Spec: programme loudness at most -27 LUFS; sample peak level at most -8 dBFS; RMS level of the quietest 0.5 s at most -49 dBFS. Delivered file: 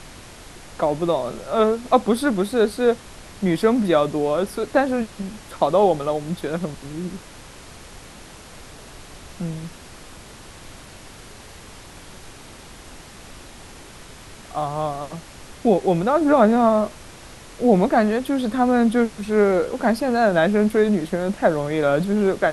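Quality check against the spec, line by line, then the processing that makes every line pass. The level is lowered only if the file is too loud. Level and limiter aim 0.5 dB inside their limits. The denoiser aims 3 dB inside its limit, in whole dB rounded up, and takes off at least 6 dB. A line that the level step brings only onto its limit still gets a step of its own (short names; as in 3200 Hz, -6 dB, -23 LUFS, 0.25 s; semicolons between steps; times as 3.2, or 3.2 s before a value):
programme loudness -20.5 LUFS: fail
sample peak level -3.0 dBFS: fail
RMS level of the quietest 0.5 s -42 dBFS: fail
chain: denoiser 6 dB, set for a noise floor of -42 dBFS; gain -7 dB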